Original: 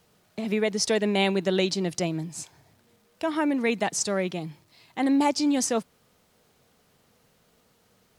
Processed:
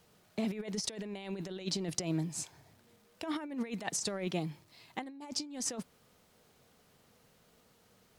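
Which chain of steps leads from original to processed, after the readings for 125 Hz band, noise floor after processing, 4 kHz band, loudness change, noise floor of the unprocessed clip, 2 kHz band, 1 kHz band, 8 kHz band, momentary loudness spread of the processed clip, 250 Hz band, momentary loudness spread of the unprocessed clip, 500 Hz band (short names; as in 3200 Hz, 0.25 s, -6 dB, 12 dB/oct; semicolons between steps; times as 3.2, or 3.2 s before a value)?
-6.5 dB, -67 dBFS, -9.0 dB, -12.0 dB, -65 dBFS, -14.5 dB, -15.0 dB, -7.0 dB, 10 LU, -12.0 dB, 14 LU, -15.0 dB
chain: negative-ratio compressor -29 dBFS, ratio -0.5; gain -7 dB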